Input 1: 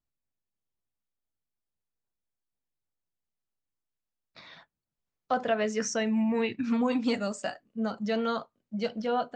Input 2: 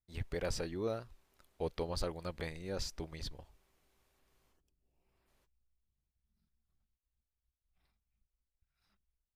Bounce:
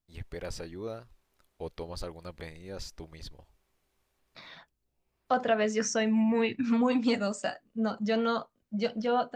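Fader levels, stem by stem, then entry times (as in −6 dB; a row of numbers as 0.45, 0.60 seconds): +1.0, −1.5 decibels; 0.00, 0.00 seconds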